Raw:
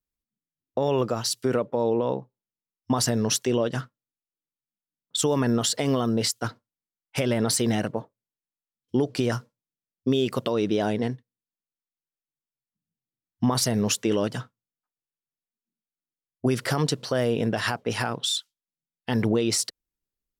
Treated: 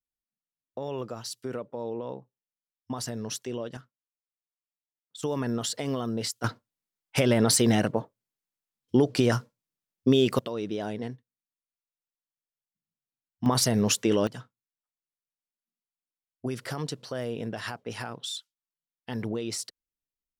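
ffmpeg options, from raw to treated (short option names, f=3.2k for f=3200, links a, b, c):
-af "asetnsamples=n=441:p=0,asendcmd='3.77 volume volume -17.5dB;5.23 volume volume -6.5dB;6.44 volume volume 2dB;10.39 volume volume -8dB;13.46 volume volume 0dB;14.27 volume volume -9dB',volume=-10.5dB"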